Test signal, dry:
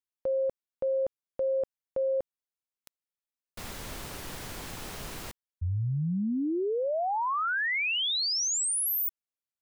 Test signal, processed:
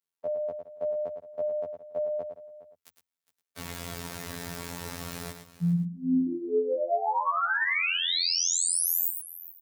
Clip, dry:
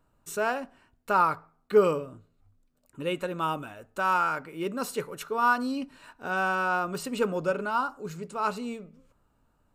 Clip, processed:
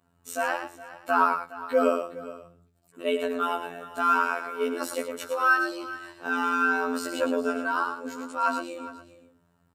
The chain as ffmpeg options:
-filter_complex "[0:a]asplit=2[a][b];[b]aecho=0:1:108:0.398[c];[a][c]amix=inputs=2:normalize=0,afreqshift=76,aecho=1:1:7.2:0.88,afftfilt=real='hypot(re,im)*cos(PI*b)':imag='0':win_size=2048:overlap=0.75,adynamicequalizer=threshold=0.00224:dfrequency=3100:dqfactor=4.7:tfrequency=3100:tqfactor=4.7:attack=5:release=100:ratio=0.45:range=1.5:mode=cutabove:tftype=bell,acontrast=27,asplit=2[d][e];[e]aecho=0:1:413:0.15[f];[d][f]amix=inputs=2:normalize=0,volume=-3dB"

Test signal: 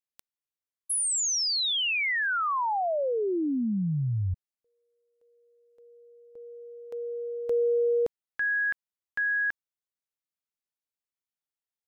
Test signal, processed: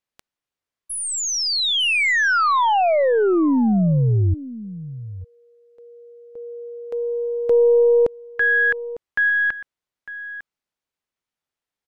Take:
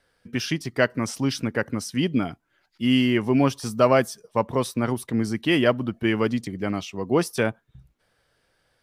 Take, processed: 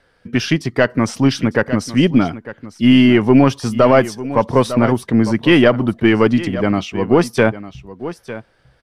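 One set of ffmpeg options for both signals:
-af "aeval=exprs='0.596*(cos(1*acos(clip(val(0)/0.596,-1,1)))-cos(1*PI/2))+0.0376*(cos(4*acos(clip(val(0)/0.596,-1,1)))-cos(4*PI/2))':c=same,aemphasis=mode=reproduction:type=50kf,aecho=1:1:902:0.168,alimiter=level_in=11.5dB:limit=-1dB:release=50:level=0:latency=1,volume=-1dB"

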